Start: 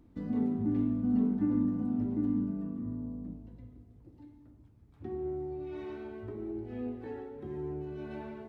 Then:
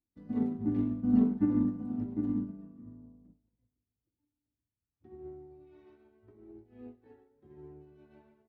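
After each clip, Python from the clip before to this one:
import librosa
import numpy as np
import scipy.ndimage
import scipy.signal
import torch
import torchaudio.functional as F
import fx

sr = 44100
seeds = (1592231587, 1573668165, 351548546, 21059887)

y = fx.upward_expand(x, sr, threshold_db=-51.0, expansion=2.5)
y = F.gain(torch.from_numpy(y), 5.5).numpy()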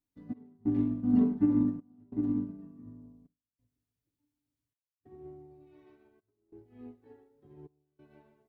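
y = fx.step_gate(x, sr, bpm=92, pattern='xx..xxxxx', floor_db=-24.0, edge_ms=4.5)
y = y + 0.44 * np.pad(y, (int(7.1 * sr / 1000.0), 0))[:len(y)]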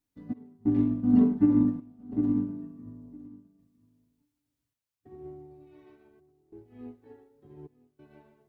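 y = x + 10.0 ** (-21.5 / 20.0) * np.pad(x, (int(959 * sr / 1000.0), 0))[:len(x)]
y = F.gain(torch.from_numpy(y), 4.0).numpy()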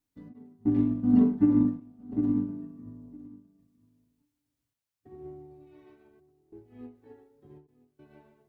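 y = fx.end_taper(x, sr, db_per_s=170.0)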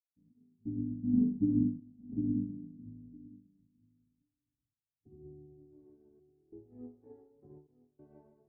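y = fx.fade_in_head(x, sr, length_s=1.57)
y = fx.filter_sweep_lowpass(y, sr, from_hz=220.0, to_hz=680.0, start_s=5.07, end_s=7.23, q=0.99)
y = F.gain(torch.from_numpy(y), -3.5).numpy()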